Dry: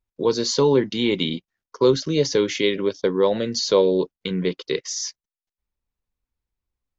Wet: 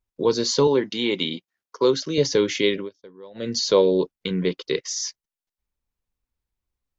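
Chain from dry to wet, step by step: 0.67–2.18 HPF 320 Hz 6 dB/oct; 2.74–3.5 dip -24 dB, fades 0.16 s

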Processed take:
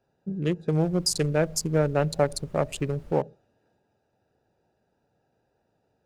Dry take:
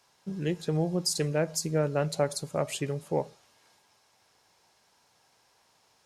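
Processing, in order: Wiener smoothing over 41 samples; 0.79–3.11 added noise brown -50 dBFS; gain +4.5 dB

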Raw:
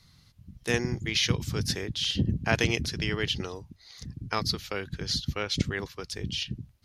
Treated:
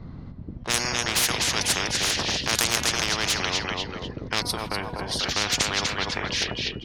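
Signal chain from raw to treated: low-pass opened by the level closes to 640 Hz, open at -21.5 dBFS; tone controls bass +9 dB, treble +1 dB; de-hum 242.4 Hz, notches 12; on a send: feedback echo 0.246 s, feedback 26%, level -11.5 dB; on the sum: spectral gain 4.42–5.19, 1100–8000 Hz -18 dB; in parallel at -7 dB: soft clip -26 dBFS, distortion -5 dB; on the sum: spectral compressor 10:1; gain +2.5 dB

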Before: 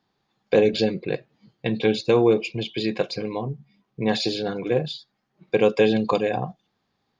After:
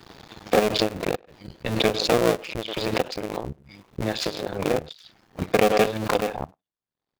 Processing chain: cycle switcher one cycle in 2, muted; transient shaper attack +4 dB, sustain -12 dB; dynamic EQ 500 Hz, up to +4 dB, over -35 dBFS, Q 7.6; spectral noise reduction 7 dB; bell 230 Hz -3 dB 0.26 oct; speakerphone echo 0.1 s, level -28 dB; backwards sustainer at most 62 dB/s; gain -2.5 dB

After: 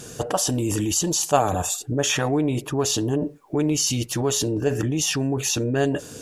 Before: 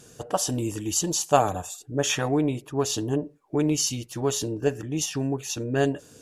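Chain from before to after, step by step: in parallel at +2 dB: negative-ratio compressor -34 dBFS, ratio -1; 2.68–3.84 on the sum: requantised 12-bit, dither none

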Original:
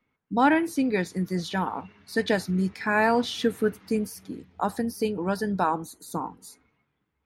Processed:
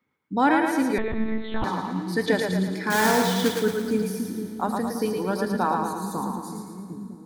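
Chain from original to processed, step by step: 2.9–3.58 block floating point 3-bit; HPF 90 Hz; bell 2700 Hz -7.5 dB 0.24 oct; notch 660 Hz, Q 12; split-band echo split 310 Hz, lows 0.753 s, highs 0.112 s, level -3.5 dB; Schroeder reverb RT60 2.8 s, combs from 29 ms, DRR 11 dB; 0.98–1.64 monotone LPC vocoder at 8 kHz 220 Hz

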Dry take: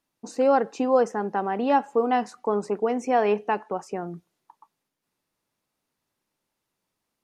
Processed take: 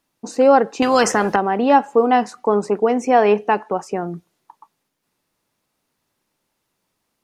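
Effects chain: 0.82–1.36 spectral compressor 2:1; gain +7.5 dB

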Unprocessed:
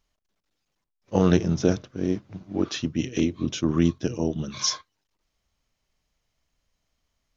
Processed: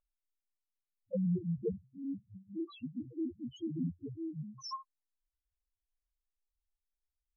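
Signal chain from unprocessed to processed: loudest bins only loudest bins 1; band shelf 840 Hz +11.5 dB; gain -5 dB

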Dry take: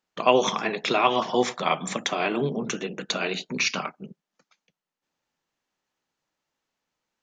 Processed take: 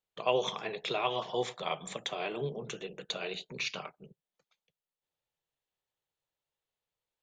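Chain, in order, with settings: EQ curve 120 Hz 0 dB, 250 Hz -16 dB, 440 Hz -3 dB, 1400 Hz -10 dB, 2400 Hz -7 dB, 3600 Hz -2 dB, 5600 Hz -12 dB, 8100 Hz -3 dB; gain -4 dB

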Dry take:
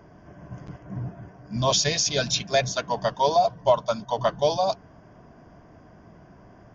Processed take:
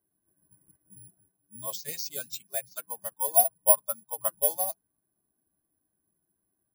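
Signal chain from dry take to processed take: per-bin expansion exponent 1.5; low shelf 150 Hz -11.5 dB; 1.05–3.34 tremolo saw down 1.2 Hz, depth 55%; air absorption 69 m; careless resampling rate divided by 4×, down none, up zero stuff; upward expander 1.5:1, over -35 dBFS; gain -4 dB

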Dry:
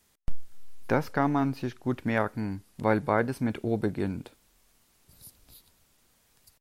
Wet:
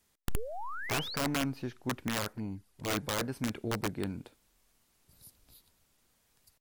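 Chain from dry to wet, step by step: wrapped overs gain 19 dB; 0.36–1.16 painted sound rise 390–4800 Hz -35 dBFS; 2.33–2.88 envelope flanger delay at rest 6.6 ms, full sweep at -28.5 dBFS; gain -5.5 dB

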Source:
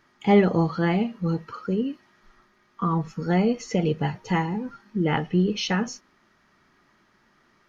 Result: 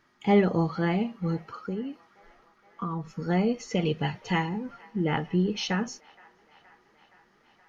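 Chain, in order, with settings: 1.54–3.16 compressor 2.5:1, threshold -27 dBFS, peak gain reduction 5.5 dB; 3.75–4.49 bell 3100 Hz +7 dB 1.4 oct; band-limited delay 0.47 s, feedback 72%, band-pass 1300 Hz, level -22.5 dB; gain -3.5 dB

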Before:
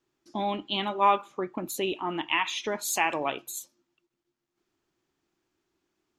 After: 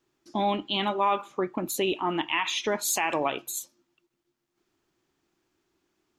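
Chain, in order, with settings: limiter -18.5 dBFS, peak gain reduction 8 dB; gain +3.5 dB

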